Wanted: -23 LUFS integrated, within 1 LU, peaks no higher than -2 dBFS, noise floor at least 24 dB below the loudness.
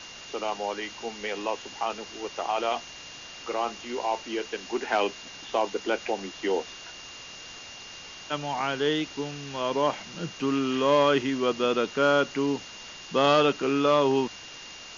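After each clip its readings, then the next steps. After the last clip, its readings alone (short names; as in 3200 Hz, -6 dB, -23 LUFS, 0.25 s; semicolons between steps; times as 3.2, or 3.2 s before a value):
steady tone 2800 Hz; tone level -45 dBFS; noise floor -44 dBFS; noise floor target -52 dBFS; loudness -27.5 LUFS; peak -8.5 dBFS; loudness target -23.0 LUFS
-> notch 2800 Hz, Q 30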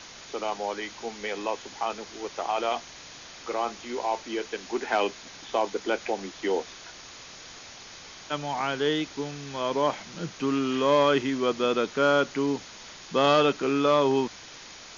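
steady tone none; noise floor -46 dBFS; noise floor target -52 dBFS
-> noise print and reduce 6 dB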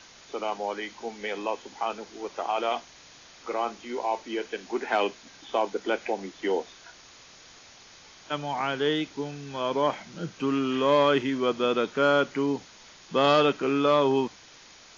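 noise floor -52 dBFS; loudness -27.5 LUFS; peak -9.0 dBFS; loudness target -23.0 LUFS
-> gain +4.5 dB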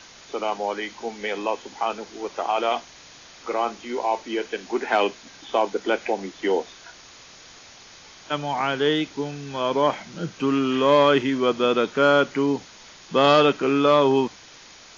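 loudness -23.0 LUFS; peak -4.5 dBFS; noise floor -47 dBFS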